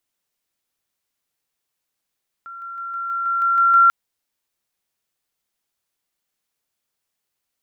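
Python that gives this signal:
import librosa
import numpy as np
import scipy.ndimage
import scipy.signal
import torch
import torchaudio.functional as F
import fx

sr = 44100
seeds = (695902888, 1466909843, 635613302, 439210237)

y = fx.level_ladder(sr, hz=1370.0, from_db=-33.0, step_db=3.0, steps=9, dwell_s=0.16, gap_s=0.0)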